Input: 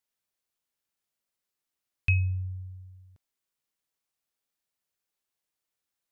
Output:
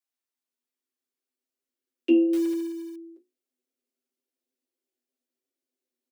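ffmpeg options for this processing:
ffmpeg -i in.wav -filter_complex "[0:a]asubboost=boost=10.5:cutoff=230,asplit=2[link_01][link_02];[link_02]asoftclip=type=tanh:threshold=-12.5dB,volume=-3.5dB[link_03];[link_01][link_03]amix=inputs=2:normalize=0,bandreject=frequency=60:width_type=h:width=6,bandreject=frequency=120:width_type=h:width=6,bandreject=frequency=180:width_type=h:width=6,aecho=1:1:7.2:0.88,flanger=delay=7.6:depth=7.6:regen=-37:speed=1.1:shape=triangular,afreqshift=240,asettb=1/sr,asplit=3[link_04][link_05][link_06];[link_04]atrim=end=2.334[link_07];[link_05]atrim=start=2.33:end=2.96,asetpts=PTS-STARTPTS,afade=type=in:duration=0.004:curve=qsin,afade=type=out:start_time=0.626:duration=0.004:curve=qsin,acrusher=bits=5:mode=log:mix=0:aa=0.000001[link_08];[link_06]atrim=start=2.956[link_09];[link_07][link_08]acrossfade=duration=0.004:curve1=hsin:curve2=qsin[link_10];[link_10][link_09]acrossfade=duration=0.004:curve1=qsin:curve2=hsin,volume=-8.5dB" out.wav

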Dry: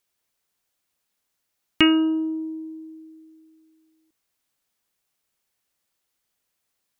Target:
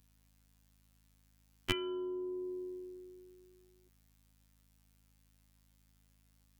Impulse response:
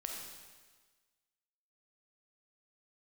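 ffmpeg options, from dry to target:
-filter_complex "[0:a]acrossover=split=110[link_01][link_02];[link_02]acompressor=threshold=-35dB:ratio=6[link_03];[link_01][link_03]amix=inputs=2:normalize=0,afftfilt=real='hypot(re,im)*cos(PI*b)':imag='0':win_size=2048:overlap=0.75,aeval=exprs='val(0)+0.0002*(sin(2*PI*50*n/s)+sin(2*PI*2*50*n/s)/2+sin(2*PI*3*50*n/s)/3+sin(2*PI*4*50*n/s)/4+sin(2*PI*5*50*n/s)/5)':channel_layout=same,asetrate=46746,aresample=44100,volume=5.5dB"

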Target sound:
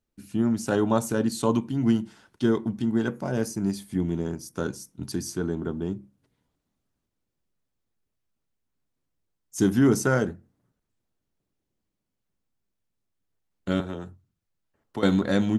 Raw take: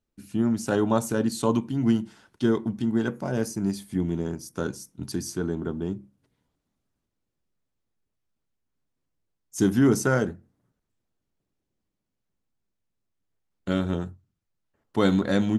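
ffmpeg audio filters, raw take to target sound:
ffmpeg -i in.wav -filter_complex "[0:a]asettb=1/sr,asplit=3[link_01][link_02][link_03];[link_01]atrim=end=13.804[link_04];[link_02]atrim=start=13.8:end=15.03,asetpts=PTS-STARTPTS,afade=type=in:duration=0.004:curve=qsin,afade=type=out:start_time=1.226:duration=0.004:curve=qsin,acrossover=split=300|3000[link_05][link_06][link_07];[link_05]acompressor=threshold=-37dB:ratio=4[link_08];[link_06]acompressor=threshold=-34dB:ratio=4[link_09];[link_07]acompressor=threshold=-56dB:ratio=4[link_10];[link_08][link_09][link_10]amix=inputs=3:normalize=0[link_11];[link_03]atrim=start=15.026[link_12];[link_04][link_11]acrossfade=duration=0.004:curve1=hsin:curve2=qsin[link_13];[link_13][link_12]acrossfade=duration=0.004:curve1=qsin:curve2=hsin" out.wav

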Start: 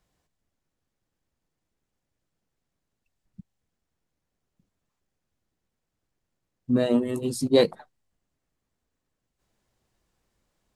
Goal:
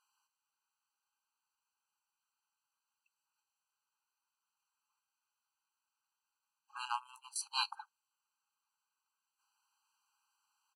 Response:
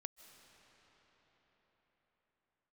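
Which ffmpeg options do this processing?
-filter_complex "[0:a]aresample=32000,aresample=44100,asettb=1/sr,asplit=3[link_01][link_02][link_03];[link_01]atrim=end=6.854[link_04];[link_02]atrim=start=6.85:end=7.36,asetpts=PTS-STARTPTS,afade=type=in:duration=0.004:curve=qsin,afade=type=out:start_time=0.506:duration=0.004:curve=qsin,aeval=exprs='0.282*(cos(1*acos(clip(val(0)/0.282,-1,1)))-cos(1*PI/2))+0.0794*(cos(3*acos(clip(val(0)/0.282,-1,1)))-cos(3*PI/2))':channel_layout=same[link_05];[link_03]atrim=start=7.356[link_06];[link_04][link_05]acrossfade=duration=0.004:curve1=hsin:curve2=qsin[link_07];[link_07][link_06]acrossfade=duration=0.004:curve1=qsin:curve2=hsin,afftfilt=real='re*eq(mod(floor(b*sr/1024/800),2),1)':imag='im*eq(mod(floor(b*sr/1024/800),2),1)':win_size=1024:overlap=0.75,volume=1dB"

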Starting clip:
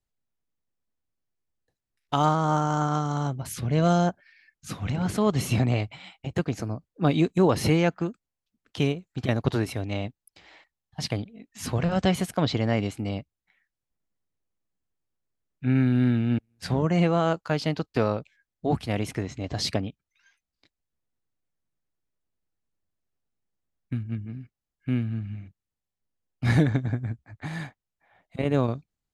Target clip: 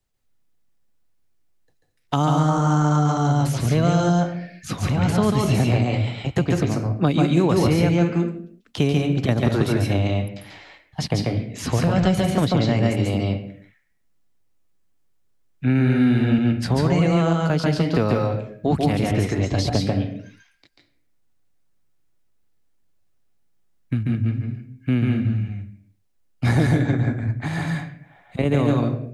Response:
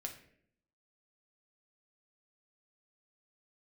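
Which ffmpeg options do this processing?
-filter_complex "[0:a]asplit=2[link_01][link_02];[1:a]atrim=start_sample=2205,afade=type=out:start_time=0.43:duration=0.01,atrim=end_sample=19404,adelay=140[link_03];[link_02][link_03]afir=irnorm=-1:irlink=0,volume=2dB[link_04];[link_01][link_04]amix=inputs=2:normalize=0,acrossover=split=330|1200|6400[link_05][link_06][link_07][link_08];[link_05]acompressor=threshold=-25dB:ratio=4[link_09];[link_06]acompressor=threshold=-32dB:ratio=4[link_10];[link_07]acompressor=threshold=-40dB:ratio=4[link_11];[link_08]acompressor=threshold=-50dB:ratio=4[link_12];[link_09][link_10][link_11][link_12]amix=inputs=4:normalize=0,volume=7.5dB"

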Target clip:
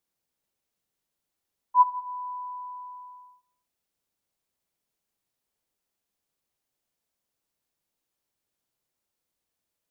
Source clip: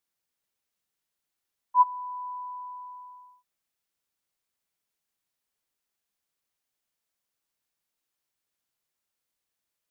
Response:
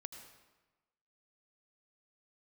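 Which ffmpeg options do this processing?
-filter_complex "[0:a]asplit=2[link_01][link_02];[link_02]lowpass=1000[link_03];[1:a]atrim=start_sample=2205,afade=type=out:start_time=0.3:duration=0.01,atrim=end_sample=13671[link_04];[link_03][link_04]afir=irnorm=-1:irlink=0,volume=3.5dB[link_05];[link_01][link_05]amix=inputs=2:normalize=0"

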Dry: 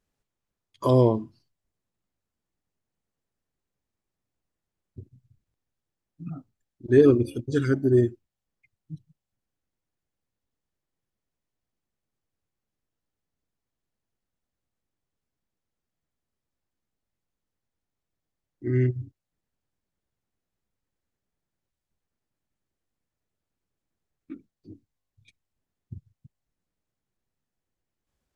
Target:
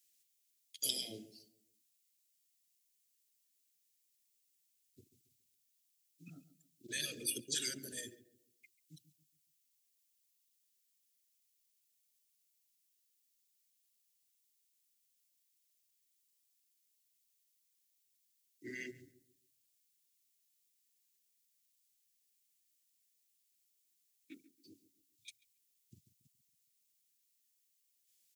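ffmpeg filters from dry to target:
ffmpeg -i in.wav -filter_complex "[0:a]afftfilt=real='re*lt(hypot(re,im),0.355)':imag='im*lt(hypot(re,im),0.355)':win_size=1024:overlap=0.75,highpass=93,aderivative,acrossover=split=140|330|2100[link_01][link_02][link_03][link_04];[link_03]alimiter=level_in=24.5dB:limit=-24dB:level=0:latency=1,volume=-24.5dB[link_05];[link_01][link_02][link_05][link_04]amix=inputs=4:normalize=0,asuperstop=centerf=1000:order=4:qfactor=0.57,asplit=2[link_06][link_07];[link_07]adelay=139,lowpass=frequency=1000:poles=1,volume=-13dB,asplit=2[link_08][link_09];[link_09]adelay=139,lowpass=frequency=1000:poles=1,volume=0.4,asplit=2[link_10][link_11];[link_11]adelay=139,lowpass=frequency=1000:poles=1,volume=0.4,asplit=2[link_12][link_13];[link_13]adelay=139,lowpass=frequency=1000:poles=1,volume=0.4[link_14];[link_06][link_08][link_10][link_12][link_14]amix=inputs=5:normalize=0,volume=13.5dB" out.wav

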